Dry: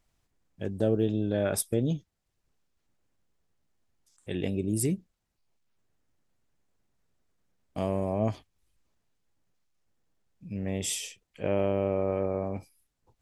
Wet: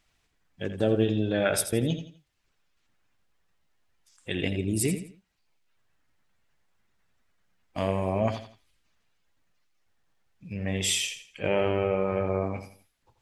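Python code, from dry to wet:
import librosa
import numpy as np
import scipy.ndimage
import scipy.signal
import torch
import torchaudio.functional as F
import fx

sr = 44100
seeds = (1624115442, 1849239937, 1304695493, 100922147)

y = fx.spec_quant(x, sr, step_db=15)
y = fx.peak_eq(y, sr, hz=2500.0, db=10.5, octaves=2.7)
y = fx.echo_feedback(y, sr, ms=84, feedback_pct=31, wet_db=-10)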